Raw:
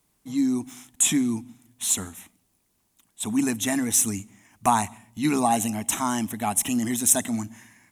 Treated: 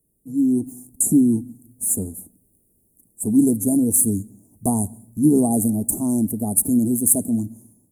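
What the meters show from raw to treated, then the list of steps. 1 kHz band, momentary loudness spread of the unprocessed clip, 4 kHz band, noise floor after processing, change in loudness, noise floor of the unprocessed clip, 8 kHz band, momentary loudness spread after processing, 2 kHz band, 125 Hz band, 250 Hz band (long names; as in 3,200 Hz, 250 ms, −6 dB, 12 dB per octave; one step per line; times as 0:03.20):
−9.5 dB, 12 LU, below −25 dB, −64 dBFS, +4.5 dB, −70 dBFS, +2.0 dB, 12 LU, below −40 dB, +8.0 dB, +7.5 dB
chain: Chebyshev band-stop filter 500–9,500 Hz, order 3
dynamic equaliser 4,200 Hz, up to −7 dB, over −47 dBFS, Q 1.1
automatic gain control gain up to 7.5 dB
level +1.5 dB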